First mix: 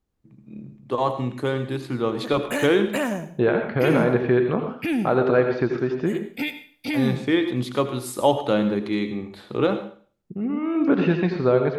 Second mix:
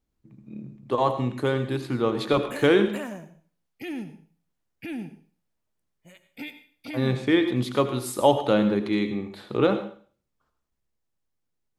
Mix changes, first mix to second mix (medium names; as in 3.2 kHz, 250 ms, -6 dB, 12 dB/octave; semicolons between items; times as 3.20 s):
second voice: muted; background -10.0 dB